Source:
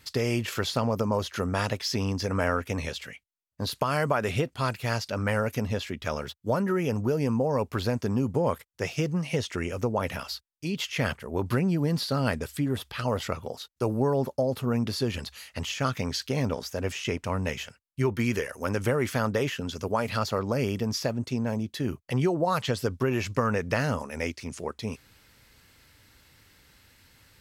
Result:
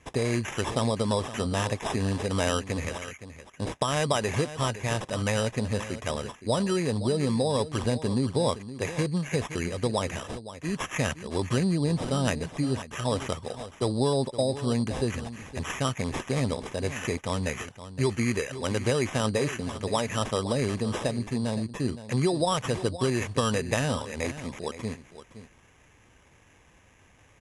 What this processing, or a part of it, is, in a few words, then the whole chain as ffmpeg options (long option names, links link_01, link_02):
crushed at another speed: -af "asetrate=88200,aresample=44100,acrusher=samples=5:mix=1:aa=0.000001,asetrate=22050,aresample=44100,bandreject=frequency=1400:width=8.6,aecho=1:1:517:0.211"